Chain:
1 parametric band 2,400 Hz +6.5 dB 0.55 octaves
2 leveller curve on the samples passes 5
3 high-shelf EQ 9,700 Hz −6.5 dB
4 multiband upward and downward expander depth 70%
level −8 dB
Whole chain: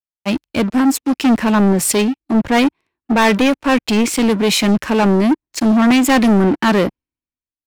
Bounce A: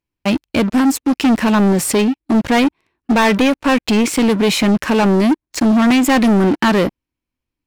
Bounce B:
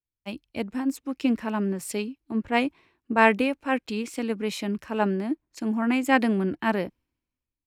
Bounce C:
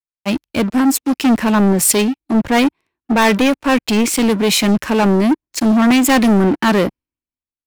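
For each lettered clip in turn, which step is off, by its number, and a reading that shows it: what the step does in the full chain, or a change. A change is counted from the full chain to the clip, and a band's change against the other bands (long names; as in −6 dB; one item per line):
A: 4, 8 kHz band −2.0 dB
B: 2, change in crest factor +10.5 dB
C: 3, 8 kHz band +3.0 dB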